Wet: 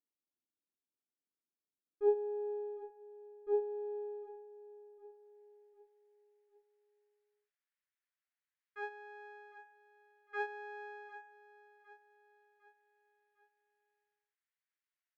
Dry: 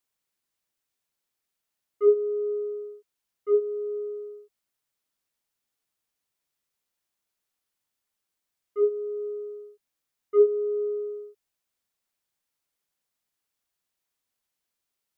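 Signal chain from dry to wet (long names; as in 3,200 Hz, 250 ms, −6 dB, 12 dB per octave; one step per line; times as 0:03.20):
half-wave rectification
band-pass filter sweep 290 Hz → 1,800 Hz, 0:04.21–0:05.42
repeating echo 755 ms, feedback 46%, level −15 dB
level +1.5 dB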